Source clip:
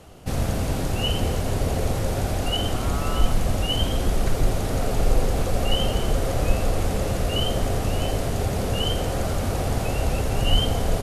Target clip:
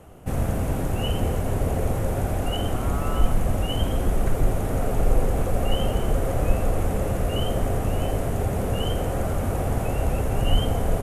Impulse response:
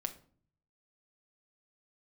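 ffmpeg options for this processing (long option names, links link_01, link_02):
-af "equalizer=frequency=4500:width_type=o:width=1.2:gain=-14"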